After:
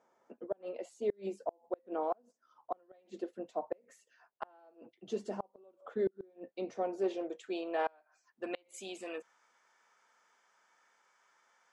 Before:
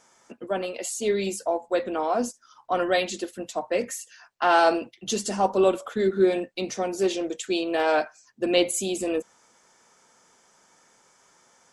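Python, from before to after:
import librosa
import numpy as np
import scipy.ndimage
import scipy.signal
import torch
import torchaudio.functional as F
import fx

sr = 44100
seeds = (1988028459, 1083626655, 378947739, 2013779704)

y = fx.filter_sweep_bandpass(x, sr, from_hz=500.0, to_hz=1600.0, start_s=6.46, end_s=9.13, q=0.92)
y = fx.gate_flip(y, sr, shuts_db=-17.0, range_db=-34)
y = y * 10.0 ** (-6.0 / 20.0)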